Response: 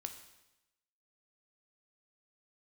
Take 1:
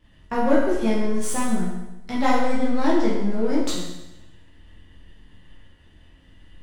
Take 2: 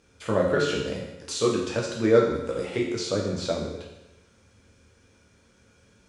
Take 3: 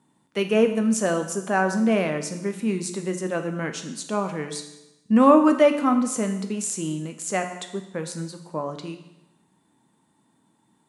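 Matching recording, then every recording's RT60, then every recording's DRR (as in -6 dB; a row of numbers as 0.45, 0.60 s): 3; 0.95, 0.95, 0.95 s; -7.5, -3.0, 6.0 dB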